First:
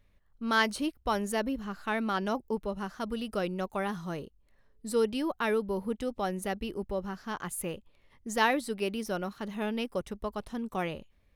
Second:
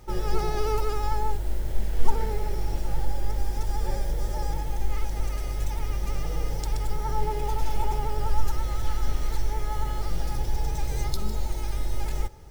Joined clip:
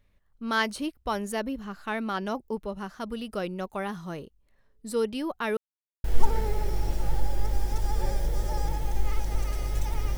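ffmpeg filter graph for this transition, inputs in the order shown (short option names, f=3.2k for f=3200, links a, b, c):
-filter_complex "[0:a]apad=whole_dur=10.17,atrim=end=10.17,asplit=2[a][b];[a]atrim=end=5.57,asetpts=PTS-STARTPTS,afade=t=out:st=5.566:d=0.004:c=hsin[c];[b]atrim=start=5.57:end=6.04,asetpts=PTS-STARTPTS,volume=0[d];[1:a]atrim=start=1.89:end=6.02,asetpts=PTS-STARTPTS,afade=t=in:d=0.004:c=hsin[e];[c][d][e]concat=n=3:v=0:a=1"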